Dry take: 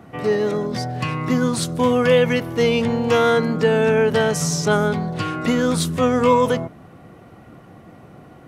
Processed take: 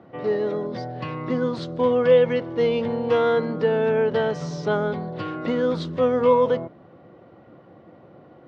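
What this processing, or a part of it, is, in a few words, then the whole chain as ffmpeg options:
guitar cabinet: -af "highpass=90,equalizer=f=340:t=q:w=4:g=6,equalizer=f=540:t=q:w=4:g=10,equalizer=f=930:t=q:w=4:g=3,equalizer=f=2.5k:t=q:w=4:g=-4,lowpass=f=4.3k:w=0.5412,lowpass=f=4.3k:w=1.3066,volume=-7.5dB"

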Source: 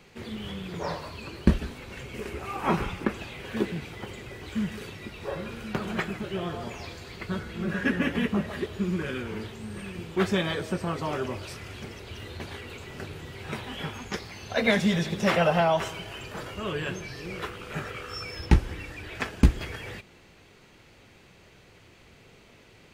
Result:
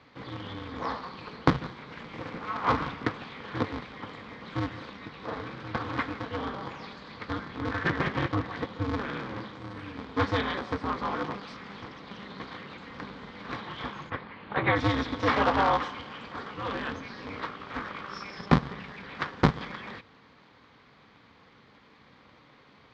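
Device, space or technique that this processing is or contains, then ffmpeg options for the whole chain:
ring modulator pedal into a guitar cabinet: -filter_complex "[0:a]aeval=exprs='val(0)*sgn(sin(2*PI*100*n/s))':c=same,highpass=94,equalizer=f=180:t=q:w=4:g=-3,equalizer=f=360:t=q:w=4:g=-6,equalizer=f=630:t=q:w=4:g=-7,equalizer=f=1.1k:t=q:w=4:g=6,equalizer=f=2.7k:t=q:w=4:g=-9,lowpass=f=4.3k:w=0.5412,lowpass=f=4.3k:w=1.3066,asplit=3[a][b][c];[a]afade=t=out:st=14.09:d=0.02[d];[b]lowpass=f=3k:w=0.5412,lowpass=f=3k:w=1.3066,afade=t=in:st=14.09:d=0.02,afade=t=out:st=14.75:d=0.02[e];[c]afade=t=in:st=14.75:d=0.02[f];[d][e][f]amix=inputs=3:normalize=0"

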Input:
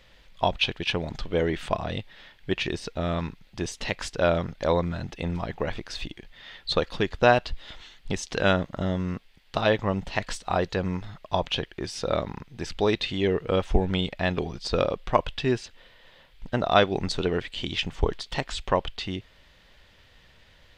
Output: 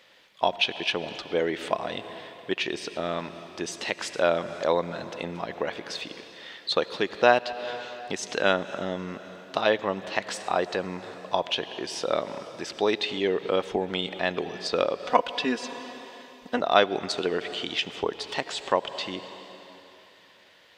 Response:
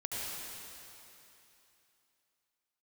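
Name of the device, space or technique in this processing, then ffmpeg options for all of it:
ducked reverb: -filter_complex "[0:a]asplit=3[a][b][c];[1:a]atrim=start_sample=2205[d];[b][d]afir=irnorm=-1:irlink=0[e];[c]apad=whole_len=916141[f];[e][f]sidechaincompress=threshold=-30dB:ratio=8:attack=11:release=179,volume=-11dB[g];[a][g]amix=inputs=2:normalize=0,highpass=290,asettb=1/sr,asplit=3[h][i][j];[h]atrim=end=15.054[k];[i]atrim=start=15.05:end=16.59,asetpts=PTS-STARTPTS,afade=t=in:d=0.004:c=qsin,afade=t=out:st=1.536:d=0.004:c=qsin,aecho=1:1:4.1:0.82,atrim=end_sample=67914[l];[j]atrim=start=16.586[m];[k][l]acrossfade=d=0.004:c1=hsin:c2=qsin[n];[n][m]acrossfade=d=0.004:c1=qsin:c2=hsin"

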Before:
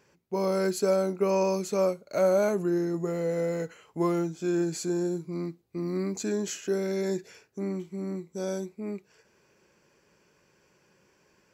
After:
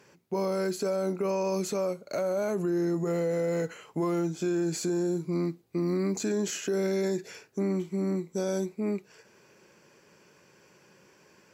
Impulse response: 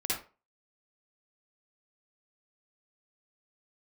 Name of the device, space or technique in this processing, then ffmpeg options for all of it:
podcast mastering chain: -af "highpass=100,deesser=0.8,acompressor=threshold=-31dB:ratio=2.5,alimiter=level_in=3.5dB:limit=-24dB:level=0:latency=1:release=27,volume=-3.5dB,volume=6.5dB" -ar 44100 -c:a libmp3lame -b:a 96k

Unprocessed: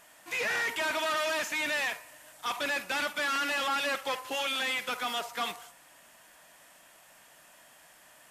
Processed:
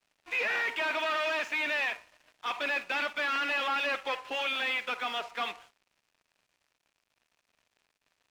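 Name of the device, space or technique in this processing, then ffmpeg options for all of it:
pocket radio on a weak battery: -af "highpass=260,lowpass=3.9k,aeval=exprs='sgn(val(0))*max(abs(val(0))-0.002,0)':c=same,equalizer=f=2.5k:t=o:w=0.28:g=5"

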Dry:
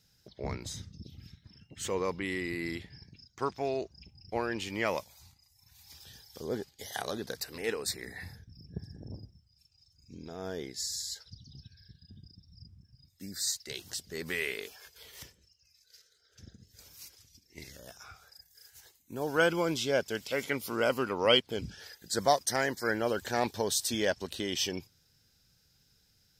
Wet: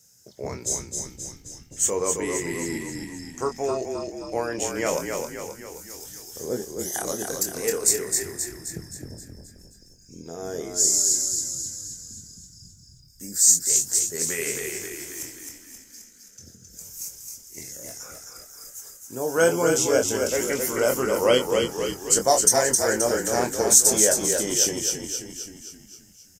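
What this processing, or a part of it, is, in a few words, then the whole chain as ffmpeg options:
budget condenser microphone: -filter_complex "[0:a]highpass=86,equalizer=f=490:t=o:w=0.96:g=4.5,highshelf=f=5.2k:t=q:w=3:g=10,asplit=2[a][b];[b]adelay=24,volume=-6dB[c];[a][c]amix=inputs=2:normalize=0,asplit=8[d][e][f][g][h][i][j][k];[e]adelay=264,afreqshift=-31,volume=-4.5dB[l];[f]adelay=528,afreqshift=-62,volume=-9.9dB[m];[g]adelay=792,afreqshift=-93,volume=-15.2dB[n];[h]adelay=1056,afreqshift=-124,volume=-20.6dB[o];[i]adelay=1320,afreqshift=-155,volume=-25.9dB[p];[j]adelay=1584,afreqshift=-186,volume=-31.3dB[q];[k]adelay=1848,afreqshift=-217,volume=-36.6dB[r];[d][l][m][n][o][p][q][r]amix=inputs=8:normalize=0,volume=2dB"

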